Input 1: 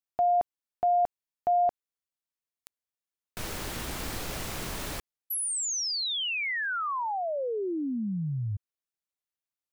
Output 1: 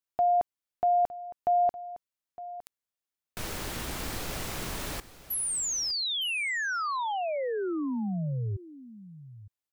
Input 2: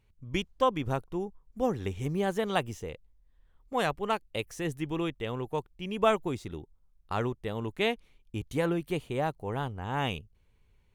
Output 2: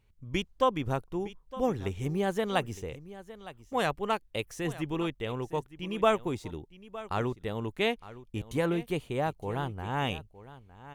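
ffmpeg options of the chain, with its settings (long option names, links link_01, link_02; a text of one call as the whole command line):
ffmpeg -i in.wav -af "aecho=1:1:911:0.15" out.wav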